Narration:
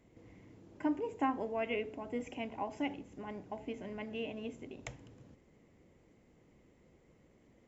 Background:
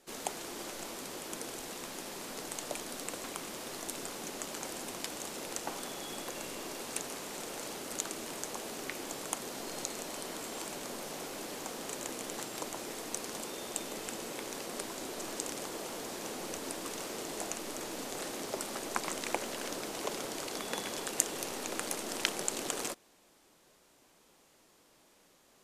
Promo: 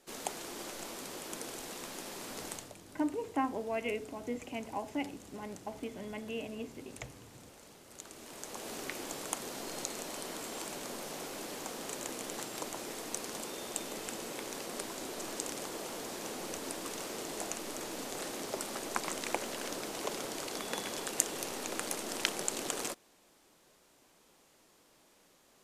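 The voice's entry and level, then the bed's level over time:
2.15 s, +0.5 dB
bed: 2.52 s -1 dB
2.75 s -15 dB
7.86 s -15 dB
8.72 s -0.5 dB

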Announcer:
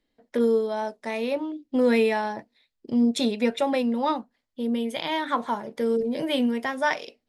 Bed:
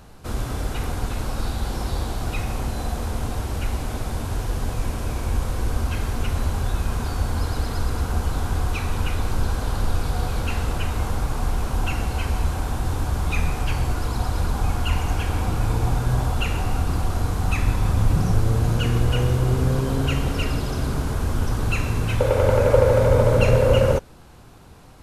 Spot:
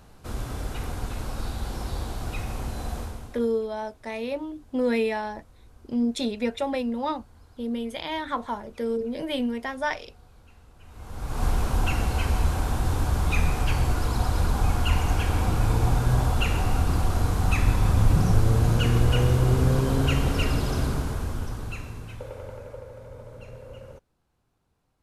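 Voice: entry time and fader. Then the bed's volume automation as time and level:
3.00 s, -3.5 dB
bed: 3 s -5.5 dB
3.64 s -29 dB
10.75 s -29 dB
11.44 s -0.5 dB
20.79 s -0.5 dB
22.9 s -26.5 dB

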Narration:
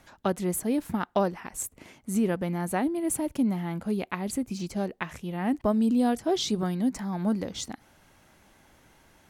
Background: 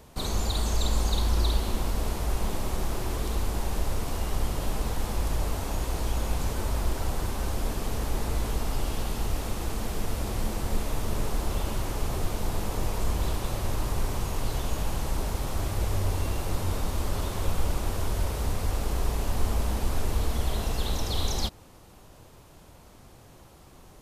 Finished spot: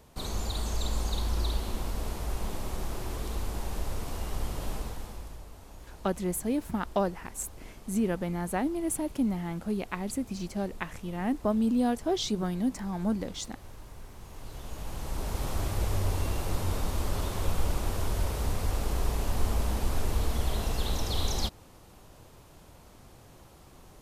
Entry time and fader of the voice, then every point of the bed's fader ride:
5.80 s, -2.5 dB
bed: 4.74 s -5 dB
5.46 s -18.5 dB
14.12 s -18.5 dB
15.43 s -1.5 dB

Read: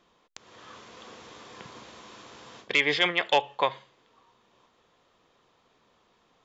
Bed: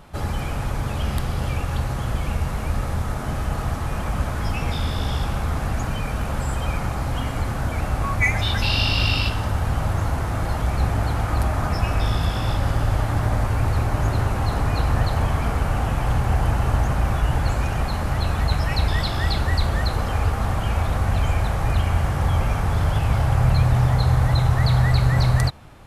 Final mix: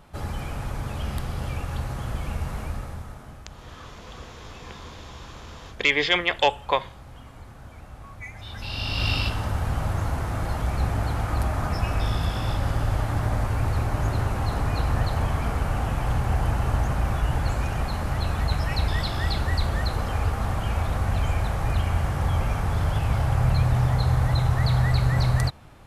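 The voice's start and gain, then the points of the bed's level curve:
3.10 s, +2.5 dB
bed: 2.6 s -5.5 dB
3.46 s -19.5 dB
8.34 s -19.5 dB
9.09 s -3.5 dB

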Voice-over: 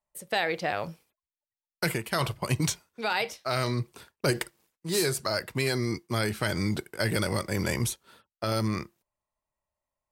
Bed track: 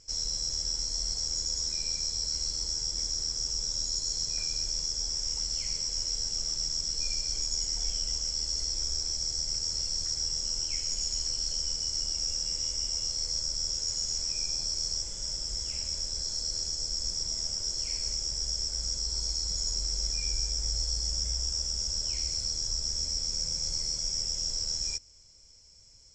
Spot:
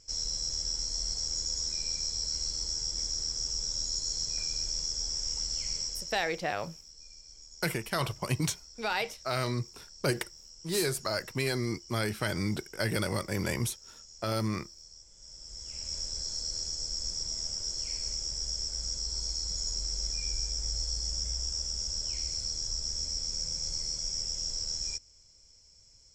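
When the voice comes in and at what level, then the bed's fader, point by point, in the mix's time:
5.80 s, -3.0 dB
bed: 5.82 s -1.5 dB
6.47 s -20 dB
15.06 s -20 dB
15.95 s -2.5 dB

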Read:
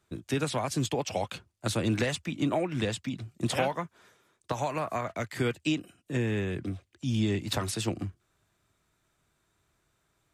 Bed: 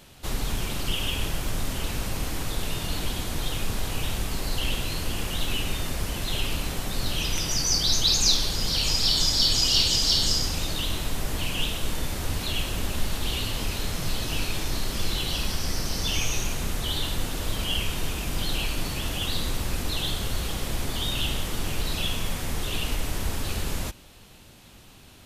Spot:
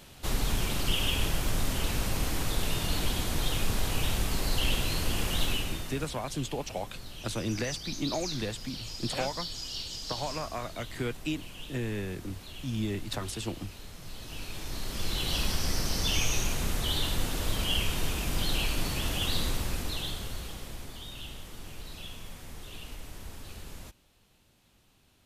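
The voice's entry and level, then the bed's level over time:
5.60 s, -4.5 dB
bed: 5.44 s -0.5 dB
6.25 s -16.5 dB
13.99 s -16.5 dB
15.37 s -1.5 dB
19.43 s -1.5 dB
21.05 s -15 dB

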